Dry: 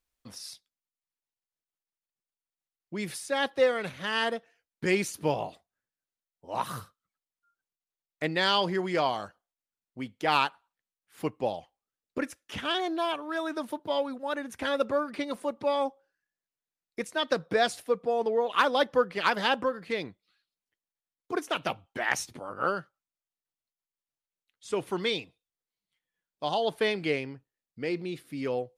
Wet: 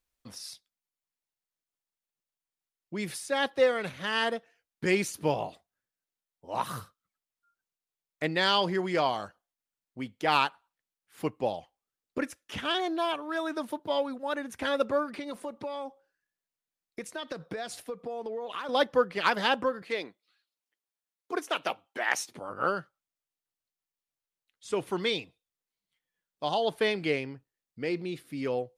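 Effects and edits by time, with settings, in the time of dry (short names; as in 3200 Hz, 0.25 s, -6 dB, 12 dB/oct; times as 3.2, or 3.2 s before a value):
15.14–18.69 compressor 10:1, threshold -32 dBFS
19.82–22.37 HPF 320 Hz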